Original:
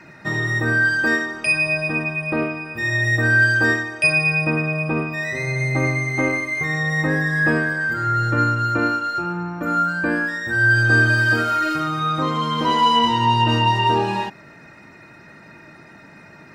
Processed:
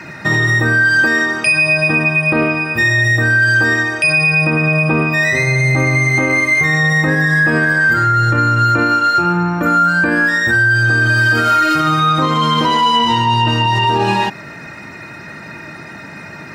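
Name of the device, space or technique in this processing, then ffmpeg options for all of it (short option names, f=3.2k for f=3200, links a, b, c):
mastering chain: -af "highpass=56,equalizer=f=400:t=o:w=3:g=-3.5,acompressor=threshold=-25dB:ratio=2,alimiter=level_in=18.5dB:limit=-1dB:release=50:level=0:latency=1,volume=-4.5dB"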